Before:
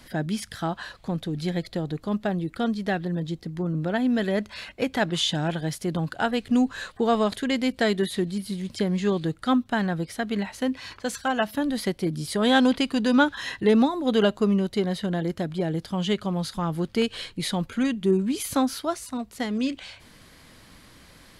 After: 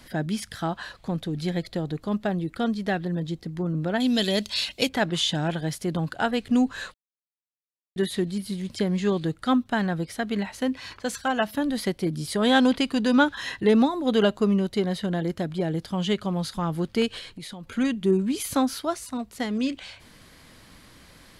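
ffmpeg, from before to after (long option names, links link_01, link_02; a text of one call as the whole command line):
ffmpeg -i in.wav -filter_complex "[0:a]asettb=1/sr,asplit=3[link_01][link_02][link_03];[link_01]atrim=end=4.004[link_04];[link_02]atrim=start=4:end=4.89,asetpts=PTS-STARTPTS,afade=type=in:duration=0.004:curve=qsin,afade=type=out:start_time=0.886:duration=0.004:curve=qsin,highshelf=frequency=2500:width_type=q:width=1.5:gain=12.5[link_05];[link_03]atrim=start=4.886[link_06];[link_04][link_05]acrossfade=duration=0.004:curve1=hsin:curve2=qsin[link_07];[link_07][link_06]acrossfade=duration=0.004:curve1=qsin:curve2=hsin,asettb=1/sr,asplit=3[link_08][link_09][link_10];[link_08]atrim=end=17.184[link_11];[link_09]atrim=start=17.18:end=17.67,asetpts=PTS-STARTPTS,afade=type=in:duration=0.004:curve=qsin,afade=type=out:start_time=0.486:duration=0.004:curve=qsin,acompressor=threshold=-35dB:ratio=10:attack=3.2:release=140:knee=1:detection=peak[link_12];[link_10]atrim=start=17.666[link_13];[link_11][link_12]acrossfade=duration=0.004:curve1=hsin:curve2=qsin[link_14];[link_14][link_13]acrossfade=duration=0.004:curve1=qsin:curve2=hsin,asplit=3[link_15][link_16][link_17];[link_15]atrim=end=6.94,asetpts=PTS-STARTPTS,afade=type=out:start_time=6.936:duration=0.004:curve=hsin[link_18];[link_16]atrim=start=6.94:end=7.96,asetpts=PTS-STARTPTS,volume=0[link_19];[link_17]atrim=start=7.96,asetpts=PTS-STARTPTS,afade=type=in:duration=0.004:curve=hsin[link_20];[link_18][link_19][link_20]concat=n=3:v=0:a=1" out.wav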